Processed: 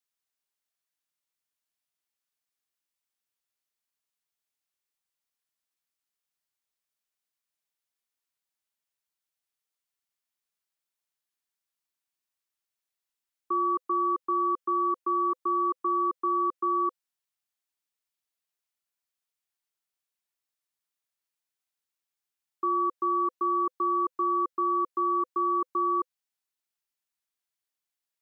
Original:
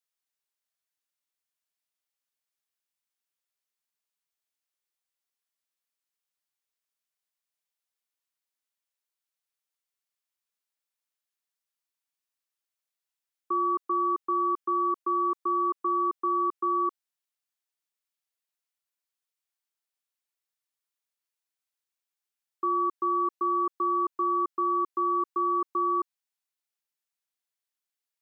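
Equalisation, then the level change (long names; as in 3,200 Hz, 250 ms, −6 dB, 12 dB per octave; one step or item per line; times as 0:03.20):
notch filter 510 Hz, Q 12
0.0 dB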